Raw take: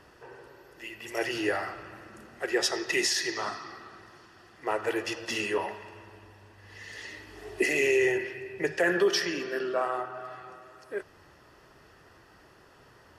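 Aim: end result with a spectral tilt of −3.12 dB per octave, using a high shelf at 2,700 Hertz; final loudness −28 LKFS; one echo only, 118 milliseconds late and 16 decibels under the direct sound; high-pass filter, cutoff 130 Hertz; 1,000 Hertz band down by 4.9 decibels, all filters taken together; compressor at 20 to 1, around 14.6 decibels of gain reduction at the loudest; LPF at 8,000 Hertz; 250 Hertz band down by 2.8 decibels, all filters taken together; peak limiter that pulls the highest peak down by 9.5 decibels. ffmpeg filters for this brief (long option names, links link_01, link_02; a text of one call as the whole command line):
ffmpeg -i in.wav -af "highpass=130,lowpass=8000,equalizer=frequency=250:width_type=o:gain=-4,equalizer=frequency=1000:width_type=o:gain=-6,highshelf=frequency=2700:gain=-4,acompressor=threshold=-37dB:ratio=20,alimiter=level_in=10.5dB:limit=-24dB:level=0:latency=1,volume=-10.5dB,aecho=1:1:118:0.158,volume=17dB" out.wav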